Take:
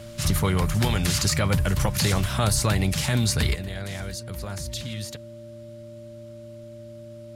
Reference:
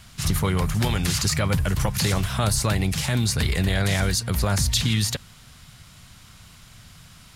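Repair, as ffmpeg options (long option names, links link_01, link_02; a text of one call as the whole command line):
ffmpeg -i in.wav -af "bandreject=frequency=113.4:width_type=h:width=4,bandreject=frequency=226.8:width_type=h:width=4,bandreject=frequency=340.2:width_type=h:width=4,bandreject=frequency=590:width=30,asetnsamples=nb_out_samples=441:pad=0,asendcmd='3.55 volume volume 11.5dB',volume=0dB" out.wav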